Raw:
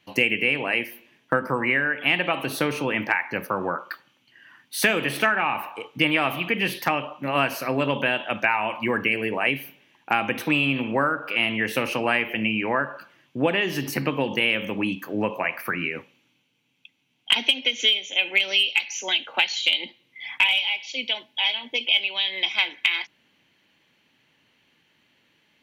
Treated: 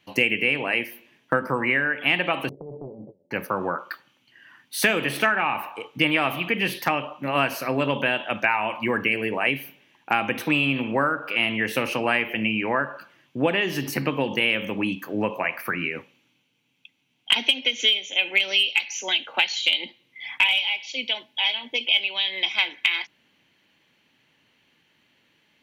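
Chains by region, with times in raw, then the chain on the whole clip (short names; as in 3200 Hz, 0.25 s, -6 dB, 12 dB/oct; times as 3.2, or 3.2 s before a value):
2.49–3.31 compressor 5:1, threshold -26 dBFS + rippled Chebyshev low-pass 590 Hz, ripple 9 dB + Doppler distortion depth 0.48 ms
whole clip: dry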